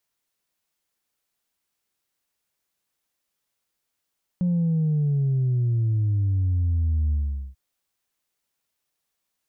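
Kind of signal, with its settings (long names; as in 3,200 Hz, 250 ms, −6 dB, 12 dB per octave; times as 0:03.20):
bass drop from 180 Hz, over 3.14 s, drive 0.5 dB, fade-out 0.43 s, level −19.5 dB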